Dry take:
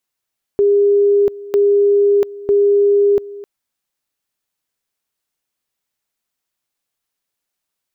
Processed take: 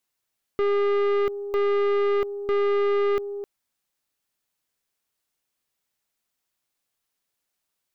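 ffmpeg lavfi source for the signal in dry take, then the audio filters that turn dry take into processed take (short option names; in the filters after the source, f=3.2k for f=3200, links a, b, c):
-f lavfi -i "aevalsrc='pow(10,(-9-19*gte(mod(t,0.95),0.69))/20)*sin(2*PI*405*t)':d=2.85:s=44100"
-af "aeval=exprs='(tanh(11.2*val(0)+0.3)-tanh(0.3))/11.2':c=same"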